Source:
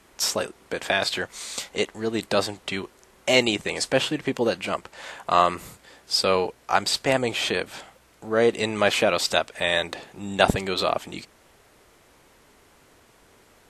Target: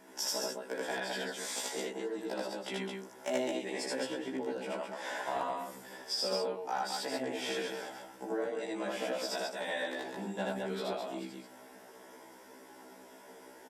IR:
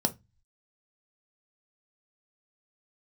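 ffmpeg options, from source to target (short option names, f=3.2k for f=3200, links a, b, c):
-filter_complex "[0:a]highshelf=f=9.1k:g=8,asplit=2[a][b];[1:a]atrim=start_sample=2205,asetrate=48510,aresample=44100,lowpass=3.4k[c];[b][c]afir=irnorm=-1:irlink=0,volume=-4dB[d];[a][d]amix=inputs=2:normalize=0,acompressor=threshold=-28dB:ratio=6,bass=f=250:g=-13,treble=f=4k:g=-1,aecho=1:1:78.72|212.8:1|0.631,aeval=exprs='clip(val(0),-1,0.106)':c=same,highpass=85,afftfilt=real='re*1.73*eq(mod(b,3),0)':imag='im*1.73*eq(mod(b,3),0)':win_size=2048:overlap=0.75,volume=-4dB"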